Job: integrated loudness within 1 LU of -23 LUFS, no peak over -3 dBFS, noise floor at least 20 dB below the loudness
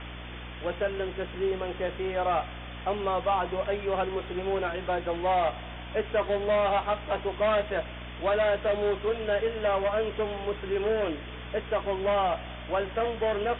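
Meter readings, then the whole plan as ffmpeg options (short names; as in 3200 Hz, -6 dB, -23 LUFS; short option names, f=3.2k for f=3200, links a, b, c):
hum 60 Hz; harmonics up to 300 Hz; hum level -40 dBFS; noise floor -40 dBFS; noise floor target -49 dBFS; loudness -29.0 LUFS; peak -16.5 dBFS; loudness target -23.0 LUFS
-> -af "bandreject=f=60:t=h:w=4,bandreject=f=120:t=h:w=4,bandreject=f=180:t=h:w=4,bandreject=f=240:t=h:w=4,bandreject=f=300:t=h:w=4"
-af "afftdn=nr=9:nf=-40"
-af "volume=6dB"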